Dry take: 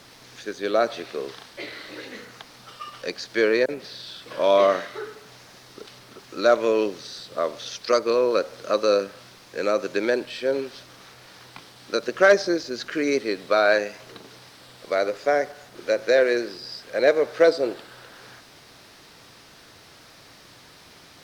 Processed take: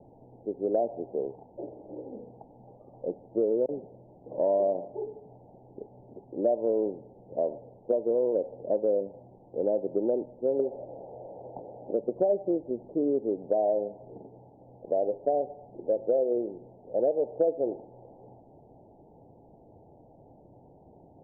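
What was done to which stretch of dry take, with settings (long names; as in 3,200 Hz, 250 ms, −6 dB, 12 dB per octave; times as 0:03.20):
0:10.59–0:11.93: parametric band 560 Hz +15 dB 1.1 octaves
whole clip: Butterworth low-pass 870 Hz 96 dB per octave; downward compressor 4 to 1, threshold −23 dBFS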